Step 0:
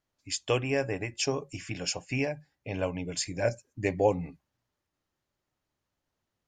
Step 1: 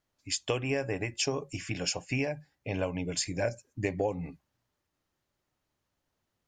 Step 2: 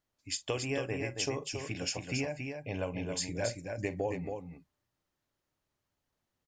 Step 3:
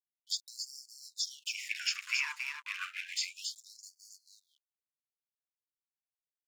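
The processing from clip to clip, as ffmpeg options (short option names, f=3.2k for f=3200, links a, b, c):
-af "acompressor=threshold=-28dB:ratio=6,volume=2dB"
-af "aecho=1:1:44|276:0.158|0.531,volume=-4dB"
-filter_complex "[0:a]aeval=exprs='sgn(val(0))*max(abs(val(0))-0.00447,0)':c=same,acrossover=split=5200[a][b];[b]acompressor=threshold=-55dB:ratio=4:attack=1:release=60[c];[a][c]amix=inputs=2:normalize=0,afftfilt=real='re*gte(b*sr/1024,860*pow(4400/860,0.5+0.5*sin(2*PI*0.31*pts/sr)))':imag='im*gte(b*sr/1024,860*pow(4400/860,0.5+0.5*sin(2*PI*0.31*pts/sr)))':win_size=1024:overlap=0.75,volume=9dB"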